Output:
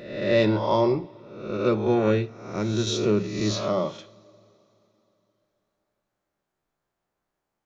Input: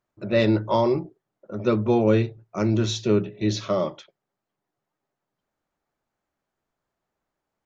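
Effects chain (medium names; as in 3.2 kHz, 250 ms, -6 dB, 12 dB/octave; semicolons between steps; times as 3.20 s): reverse spectral sustain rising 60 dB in 0.85 s; two-slope reverb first 0.46 s, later 3.5 s, from -20 dB, DRR 12 dB; 1.57–2.87 s: upward expansion 1.5:1, over -26 dBFS; trim -2.5 dB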